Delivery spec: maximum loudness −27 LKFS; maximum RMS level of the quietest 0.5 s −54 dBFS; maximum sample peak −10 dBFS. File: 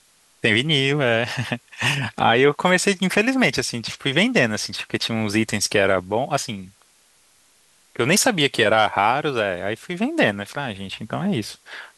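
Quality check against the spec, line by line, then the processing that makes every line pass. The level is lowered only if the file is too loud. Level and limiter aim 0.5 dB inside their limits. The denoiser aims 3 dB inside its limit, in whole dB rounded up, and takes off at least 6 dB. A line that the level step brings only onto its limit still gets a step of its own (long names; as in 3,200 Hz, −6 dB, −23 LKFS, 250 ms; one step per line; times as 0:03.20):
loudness −20.5 LKFS: out of spec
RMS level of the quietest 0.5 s −58 dBFS: in spec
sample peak −3.5 dBFS: out of spec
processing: level −7 dB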